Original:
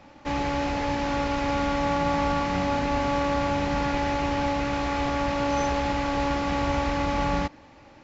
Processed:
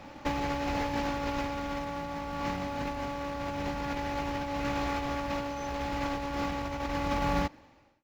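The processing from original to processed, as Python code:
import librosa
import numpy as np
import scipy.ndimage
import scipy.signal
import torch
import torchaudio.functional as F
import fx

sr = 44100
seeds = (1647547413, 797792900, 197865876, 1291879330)

p1 = fx.fade_out_tail(x, sr, length_s=1.18)
p2 = fx.quant_float(p1, sr, bits=2)
p3 = p1 + (p2 * librosa.db_to_amplitude(-7.0))
p4 = fx.over_compress(p3, sr, threshold_db=-26.0, ratio=-0.5)
y = p4 * librosa.db_to_amplitude(-5.0)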